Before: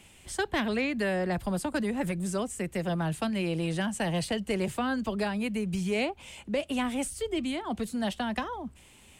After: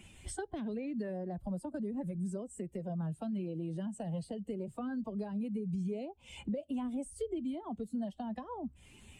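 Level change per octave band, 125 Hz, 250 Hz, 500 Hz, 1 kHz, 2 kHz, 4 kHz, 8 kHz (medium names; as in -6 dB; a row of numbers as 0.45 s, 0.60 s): -6.5 dB, -6.0 dB, -9.5 dB, -12.0 dB, -21.0 dB, -19.5 dB, -12.0 dB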